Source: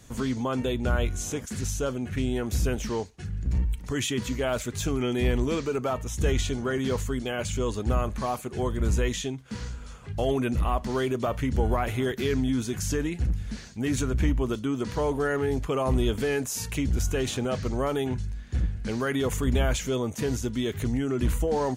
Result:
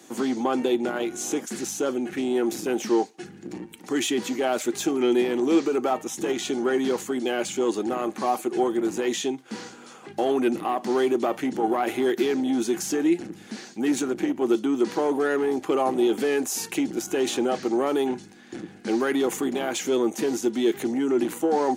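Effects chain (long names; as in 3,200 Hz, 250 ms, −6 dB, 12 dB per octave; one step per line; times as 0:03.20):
in parallel at +1.5 dB: brickwall limiter −20 dBFS, peak gain reduction 7 dB
on the sum: soft clipping −14.5 dBFS, distortion −19 dB
high-pass filter 220 Hz 24 dB per octave
hollow resonant body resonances 340/780 Hz, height 13 dB, ringing for 70 ms
level −3 dB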